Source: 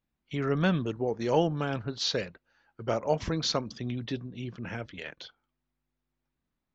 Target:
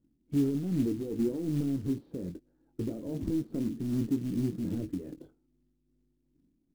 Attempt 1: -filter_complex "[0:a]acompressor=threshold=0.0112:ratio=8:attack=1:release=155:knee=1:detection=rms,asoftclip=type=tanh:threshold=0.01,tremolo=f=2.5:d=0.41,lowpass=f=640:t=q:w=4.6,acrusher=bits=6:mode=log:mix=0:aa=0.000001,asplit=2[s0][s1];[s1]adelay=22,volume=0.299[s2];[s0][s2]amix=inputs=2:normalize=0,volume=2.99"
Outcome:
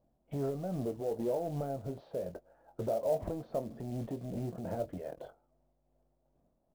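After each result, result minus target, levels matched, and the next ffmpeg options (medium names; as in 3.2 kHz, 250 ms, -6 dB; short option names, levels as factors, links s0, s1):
500 Hz band +9.0 dB; compression: peak gain reduction +8.5 dB
-filter_complex "[0:a]acompressor=threshold=0.0112:ratio=8:attack=1:release=155:knee=1:detection=rms,asoftclip=type=tanh:threshold=0.01,tremolo=f=2.5:d=0.41,lowpass=f=300:t=q:w=4.6,acrusher=bits=6:mode=log:mix=0:aa=0.000001,asplit=2[s0][s1];[s1]adelay=22,volume=0.299[s2];[s0][s2]amix=inputs=2:normalize=0,volume=2.99"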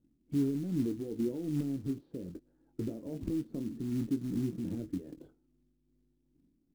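compression: peak gain reduction +8.5 dB
-filter_complex "[0:a]acompressor=threshold=0.0335:ratio=8:attack=1:release=155:knee=1:detection=rms,asoftclip=type=tanh:threshold=0.01,tremolo=f=2.5:d=0.41,lowpass=f=300:t=q:w=4.6,acrusher=bits=6:mode=log:mix=0:aa=0.000001,asplit=2[s0][s1];[s1]adelay=22,volume=0.299[s2];[s0][s2]amix=inputs=2:normalize=0,volume=2.99"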